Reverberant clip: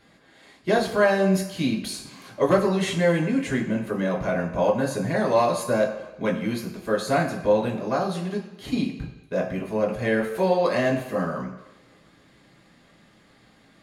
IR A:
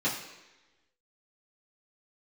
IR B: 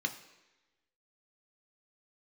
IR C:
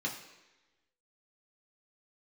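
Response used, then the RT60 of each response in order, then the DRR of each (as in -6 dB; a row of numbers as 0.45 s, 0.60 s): C; 1.1 s, 1.1 s, 1.1 s; -9.0 dB, 5.0 dB, -2.5 dB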